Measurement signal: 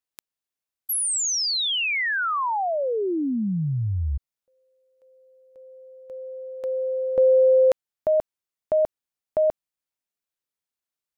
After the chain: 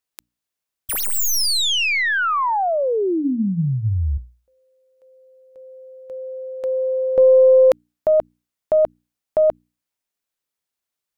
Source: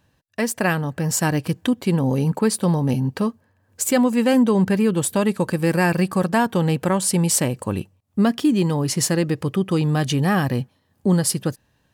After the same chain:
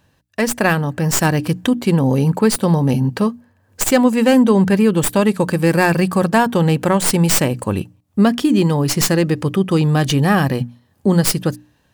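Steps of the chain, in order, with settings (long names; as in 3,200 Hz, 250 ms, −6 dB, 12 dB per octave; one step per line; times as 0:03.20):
stylus tracing distortion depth 0.07 ms
mains-hum notches 60/120/180/240/300 Hz
level +5 dB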